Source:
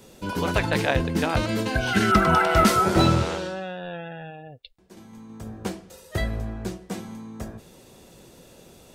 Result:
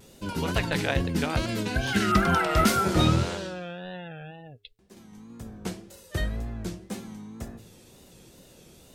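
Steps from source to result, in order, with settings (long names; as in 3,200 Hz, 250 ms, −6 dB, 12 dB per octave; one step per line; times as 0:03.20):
parametric band 810 Hz −5 dB 2.3 octaves
hum removal 108.2 Hz, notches 4
tape wow and flutter 98 cents
level −1 dB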